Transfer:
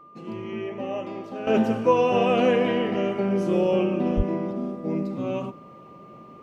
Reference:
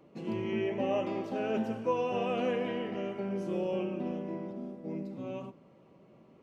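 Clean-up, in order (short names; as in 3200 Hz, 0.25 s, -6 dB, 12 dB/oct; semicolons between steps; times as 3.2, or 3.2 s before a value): notch 1200 Hz, Q 30; 1.47 gain correction -11 dB; 4.16–4.28 HPF 140 Hz 24 dB/oct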